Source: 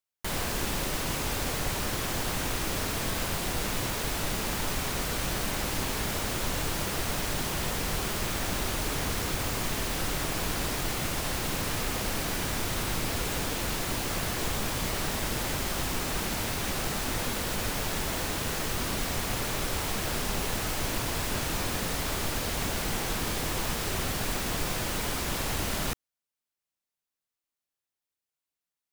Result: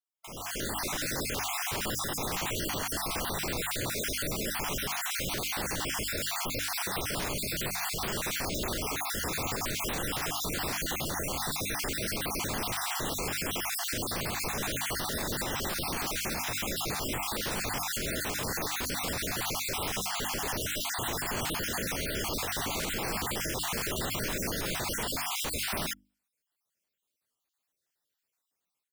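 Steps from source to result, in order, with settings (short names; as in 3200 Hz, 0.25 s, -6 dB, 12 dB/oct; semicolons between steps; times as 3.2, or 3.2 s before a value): random spectral dropouts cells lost 44%; low shelf 73 Hz -8.5 dB; notches 50/100/150/200/250/300 Hz; limiter -31 dBFS, peak gain reduction 11.5 dB; AGC gain up to 14 dB; gain -6.5 dB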